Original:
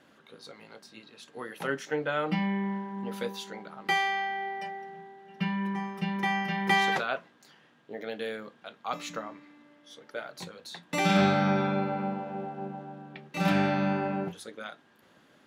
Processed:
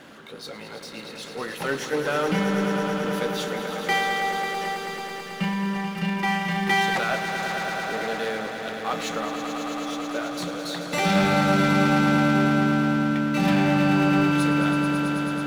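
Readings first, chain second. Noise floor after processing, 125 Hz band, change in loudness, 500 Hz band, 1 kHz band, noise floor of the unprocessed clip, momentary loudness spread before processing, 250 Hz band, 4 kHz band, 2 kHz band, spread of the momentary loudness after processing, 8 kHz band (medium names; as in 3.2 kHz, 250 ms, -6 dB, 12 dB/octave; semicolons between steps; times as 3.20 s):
-39 dBFS, +8.0 dB, +6.5 dB, +7.0 dB, +6.0 dB, -62 dBFS, 20 LU, +9.0 dB, +7.0 dB, +7.0 dB, 12 LU, +10.0 dB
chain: power-law waveshaper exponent 0.7; echo with a slow build-up 109 ms, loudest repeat 5, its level -9 dB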